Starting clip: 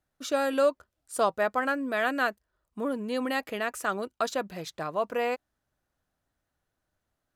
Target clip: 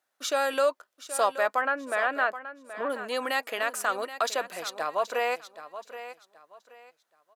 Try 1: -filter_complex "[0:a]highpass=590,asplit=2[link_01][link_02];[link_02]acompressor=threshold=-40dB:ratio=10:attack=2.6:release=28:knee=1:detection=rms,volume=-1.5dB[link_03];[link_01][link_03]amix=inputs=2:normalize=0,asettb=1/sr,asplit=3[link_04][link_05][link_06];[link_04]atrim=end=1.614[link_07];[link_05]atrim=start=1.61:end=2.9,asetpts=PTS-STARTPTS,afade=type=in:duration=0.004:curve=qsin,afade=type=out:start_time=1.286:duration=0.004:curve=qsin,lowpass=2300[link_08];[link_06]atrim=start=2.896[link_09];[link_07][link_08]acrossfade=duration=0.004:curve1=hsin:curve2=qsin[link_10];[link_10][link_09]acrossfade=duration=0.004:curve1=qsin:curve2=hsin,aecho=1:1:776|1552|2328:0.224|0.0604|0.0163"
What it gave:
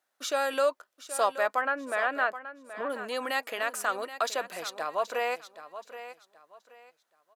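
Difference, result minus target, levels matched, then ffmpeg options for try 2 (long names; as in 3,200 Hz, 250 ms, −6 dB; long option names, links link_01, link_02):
downward compressor: peak gain reduction +8.5 dB
-filter_complex "[0:a]highpass=590,asplit=2[link_01][link_02];[link_02]acompressor=threshold=-30.5dB:ratio=10:attack=2.6:release=28:knee=1:detection=rms,volume=-1.5dB[link_03];[link_01][link_03]amix=inputs=2:normalize=0,asettb=1/sr,asplit=3[link_04][link_05][link_06];[link_04]atrim=end=1.614[link_07];[link_05]atrim=start=1.61:end=2.9,asetpts=PTS-STARTPTS,afade=type=in:duration=0.004:curve=qsin,afade=type=out:start_time=1.286:duration=0.004:curve=qsin,lowpass=2300[link_08];[link_06]atrim=start=2.896[link_09];[link_07][link_08]acrossfade=duration=0.004:curve1=hsin:curve2=qsin[link_10];[link_10][link_09]acrossfade=duration=0.004:curve1=qsin:curve2=hsin,aecho=1:1:776|1552|2328:0.224|0.0604|0.0163"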